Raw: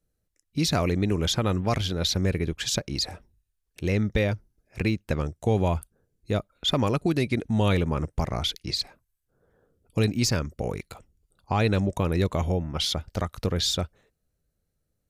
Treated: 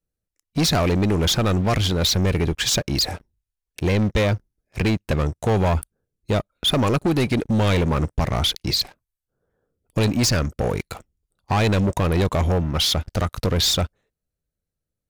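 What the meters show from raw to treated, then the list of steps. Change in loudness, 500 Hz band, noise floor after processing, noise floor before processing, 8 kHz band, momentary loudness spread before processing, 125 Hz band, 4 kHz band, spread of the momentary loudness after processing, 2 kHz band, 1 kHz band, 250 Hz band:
+5.5 dB, +4.5 dB, -85 dBFS, -78 dBFS, +6.5 dB, 9 LU, +5.0 dB, +6.0 dB, 7 LU, +5.5 dB, +5.5 dB, +4.5 dB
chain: waveshaping leveller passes 3; trim -1.5 dB

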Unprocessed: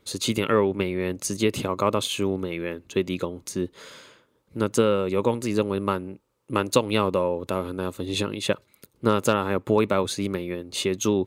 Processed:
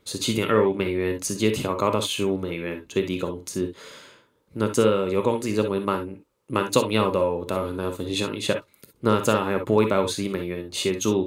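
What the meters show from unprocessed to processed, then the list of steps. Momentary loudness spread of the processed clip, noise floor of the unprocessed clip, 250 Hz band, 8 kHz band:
9 LU, -67 dBFS, +0.5 dB, +1.0 dB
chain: gated-style reverb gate 80 ms rising, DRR 6 dB

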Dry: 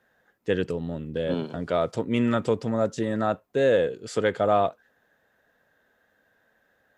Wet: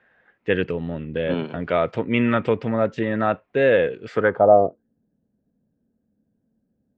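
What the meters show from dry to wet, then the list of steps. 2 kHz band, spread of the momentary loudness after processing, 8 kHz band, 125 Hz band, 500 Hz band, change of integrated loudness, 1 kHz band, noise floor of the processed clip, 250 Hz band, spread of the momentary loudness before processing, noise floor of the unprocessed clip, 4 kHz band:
+7.5 dB, 11 LU, under -15 dB, +3.0 dB, +5.0 dB, +4.5 dB, +5.0 dB, -73 dBFS, +3.0 dB, 8 LU, -69 dBFS, +1.5 dB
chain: low-pass sweep 2.4 kHz -> 220 Hz, 4.08–4.88 s; trim +3 dB

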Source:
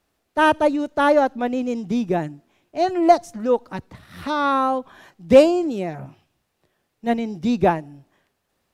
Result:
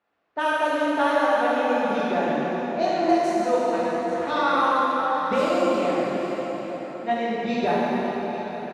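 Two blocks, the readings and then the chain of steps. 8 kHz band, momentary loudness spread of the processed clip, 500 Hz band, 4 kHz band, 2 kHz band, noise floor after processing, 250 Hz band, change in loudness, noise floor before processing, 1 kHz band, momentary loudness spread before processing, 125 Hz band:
no reading, 8 LU, -3.0 dB, 0.0 dB, +0.5 dB, -35 dBFS, -3.5 dB, -3.5 dB, -74 dBFS, -0.5 dB, 15 LU, -5.5 dB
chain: high-pass 750 Hz 6 dB/octave; level-controlled noise filter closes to 1.9 kHz, open at -16 dBFS; compression, threshold -23 dBFS, peak gain reduction 12 dB; delay 843 ms -13.5 dB; plate-style reverb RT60 4.8 s, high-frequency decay 0.7×, DRR -8.5 dB; trim -1.5 dB

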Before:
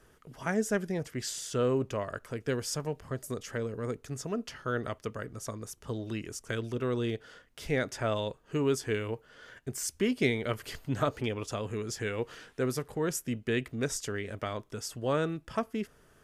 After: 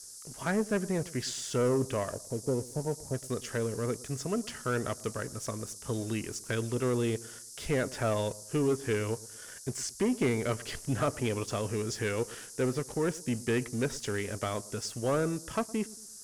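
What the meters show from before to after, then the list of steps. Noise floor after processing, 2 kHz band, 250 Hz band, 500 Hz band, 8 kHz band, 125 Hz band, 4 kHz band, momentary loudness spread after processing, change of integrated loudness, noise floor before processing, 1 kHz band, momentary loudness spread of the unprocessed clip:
-48 dBFS, -0.5 dB, +1.5 dB, +1.0 dB, +2.0 dB, +2.0 dB, 0.0 dB, 8 LU, +1.0 dB, -62 dBFS, +0.5 dB, 10 LU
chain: low-pass that closes with the level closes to 1.9 kHz, closed at -24.5 dBFS; time-frequency box 2.13–3.14 s, 980–8400 Hz -27 dB; waveshaping leveller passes 2; band noise 5–11 kHz -43 dBFS; on a send: feedback echo behind a low-pass 113 ms, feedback 37%, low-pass 1 kHz, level -19.5 dB; on the sum: trim -5 dB

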